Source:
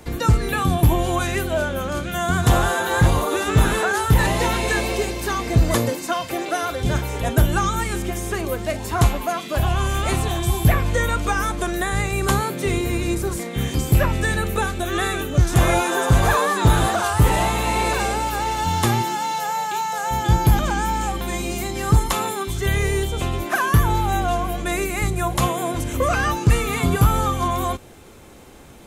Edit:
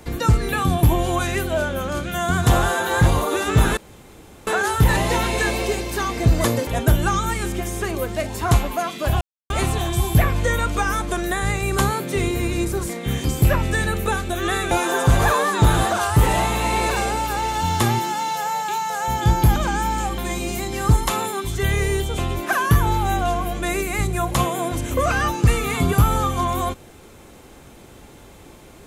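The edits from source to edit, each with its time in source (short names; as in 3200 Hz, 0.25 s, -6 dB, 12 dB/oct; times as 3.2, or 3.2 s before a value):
3.77 insert room tone 0.70 s
5.97–7.17 cut
9.71–10 mute
15.21–15.74 cut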